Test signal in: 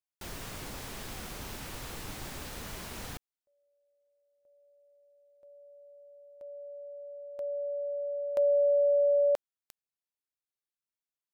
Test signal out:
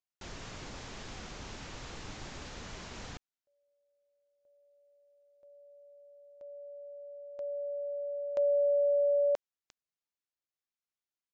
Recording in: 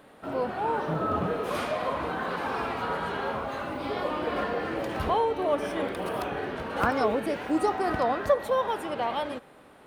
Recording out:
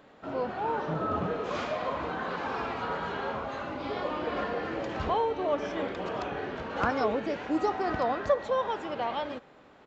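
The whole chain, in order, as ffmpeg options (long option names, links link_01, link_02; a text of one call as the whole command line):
ffmpeg -i in.wav -af "aresample=16000,aresample=44100,volume=-2.5dB" out.wav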